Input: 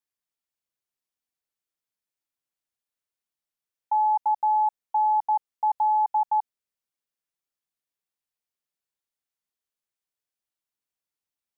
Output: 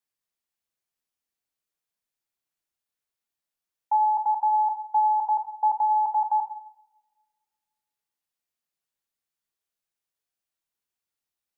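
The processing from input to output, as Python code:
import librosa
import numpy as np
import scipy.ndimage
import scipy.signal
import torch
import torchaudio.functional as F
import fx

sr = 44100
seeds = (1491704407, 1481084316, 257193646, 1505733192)

y = fx.rev_double_slope(x, sr, seeds[0], early_s=0.63, late_s=1.9, knee_db=-26, drr_db=4.0)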